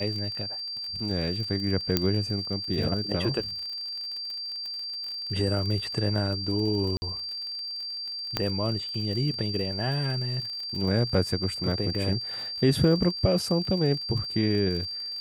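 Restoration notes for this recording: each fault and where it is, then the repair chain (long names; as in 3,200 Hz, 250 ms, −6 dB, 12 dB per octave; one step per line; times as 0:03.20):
surface crackle 44 per second −34 dBFS
whistle 4,700 Hz −32 dBFS
0:01.97: click −7 dBFS
0:06.97–0:07.02: drop-out 50 ms
0:08.37: click −10 dBFS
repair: click removal
notch filter 4,700 Hz, Q 30
repair the gap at 0:06.97, 50 ms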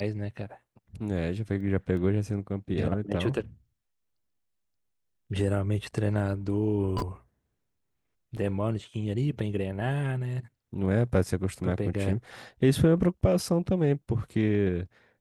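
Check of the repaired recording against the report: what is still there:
0:01.97: click
0:08.37: click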